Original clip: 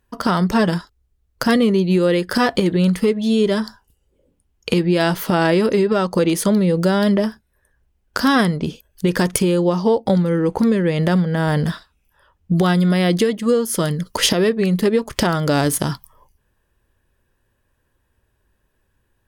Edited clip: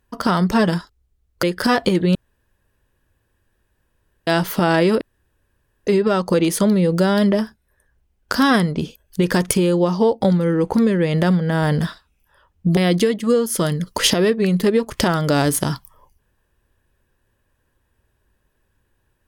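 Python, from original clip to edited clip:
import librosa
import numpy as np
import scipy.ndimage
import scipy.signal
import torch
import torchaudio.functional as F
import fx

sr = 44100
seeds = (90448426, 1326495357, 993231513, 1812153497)

y = fx.edit(x, sr, fx.cut(start_s=1.43, length_s=0.71),
    fx.room_tone_fill(start_s=2.86, length_s=2.12),
    fx.insert_room_tone(at_s=5.72, length_s=0.86),
    fx.cut(start_s=12.62, length_s=0.34), tone=tone)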